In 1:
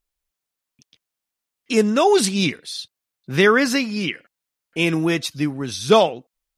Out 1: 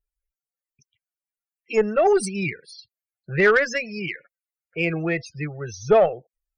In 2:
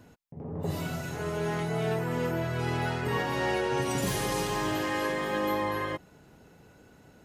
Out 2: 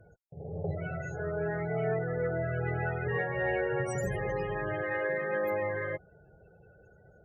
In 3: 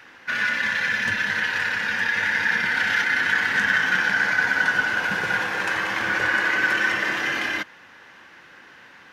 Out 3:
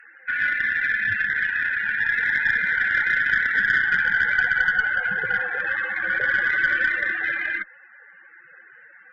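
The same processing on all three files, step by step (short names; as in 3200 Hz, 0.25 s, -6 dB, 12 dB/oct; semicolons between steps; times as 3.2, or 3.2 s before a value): loudest bins only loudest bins 32; fixed phaser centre 990 Hz, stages 6; added harmonics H 4 -25 dB, 5 -27 dB, 8 -45 dB, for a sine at -5 dBFS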